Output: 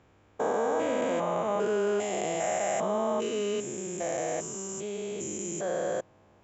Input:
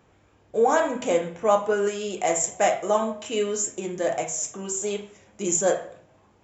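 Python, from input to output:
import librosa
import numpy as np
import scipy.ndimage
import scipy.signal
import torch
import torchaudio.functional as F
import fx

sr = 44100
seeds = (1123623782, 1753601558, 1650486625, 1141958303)

y = fx.spec_steps(x, sr, hold_ms=400)
y = fx.high_shelf(y, sr, hz=6600.0, db=-6.0)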